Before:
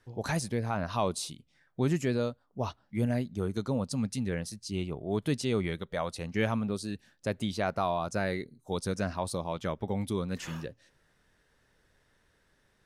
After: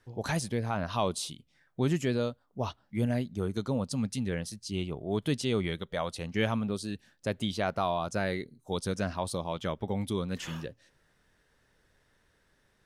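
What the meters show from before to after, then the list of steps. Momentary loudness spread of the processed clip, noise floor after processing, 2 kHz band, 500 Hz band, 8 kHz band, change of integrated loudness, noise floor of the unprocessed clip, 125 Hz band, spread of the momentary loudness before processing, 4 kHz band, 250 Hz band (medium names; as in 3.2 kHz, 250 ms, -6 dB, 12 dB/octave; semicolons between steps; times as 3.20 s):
8 LU, -70 dBFS, +0.5 dB, 0.0 dB, 0.0 dB, 0.0 dB, -70 dBFS, 0.0 dB, 7 LU, +2.5 dB, 0.0 dB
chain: dynamic bell 3.2 kHz, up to +6 dB, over -59 dBFS, Q 4.3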